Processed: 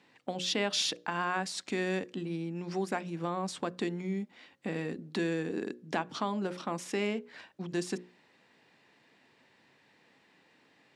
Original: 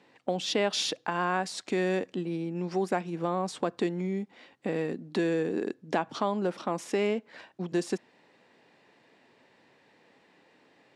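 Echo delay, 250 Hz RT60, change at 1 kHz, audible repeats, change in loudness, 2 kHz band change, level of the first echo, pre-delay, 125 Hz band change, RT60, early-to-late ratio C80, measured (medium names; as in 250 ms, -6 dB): no echo, no reverb, -4.0 dB, no echo, -3.5 dB, -1.0 dB, no echo, no reverb, -2.5 dB, no reverb, no reverb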